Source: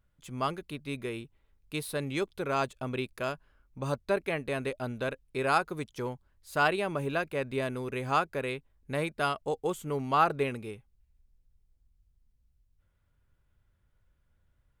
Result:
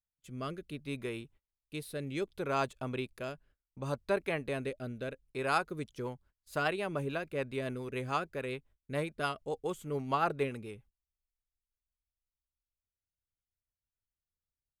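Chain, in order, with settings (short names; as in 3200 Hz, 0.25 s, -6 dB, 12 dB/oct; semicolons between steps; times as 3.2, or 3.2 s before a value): gate -56 dBFS, range -24 dB; rotary speaker horn 0.65 Hz, later 7 Hz, at 5.35; gain -2 dB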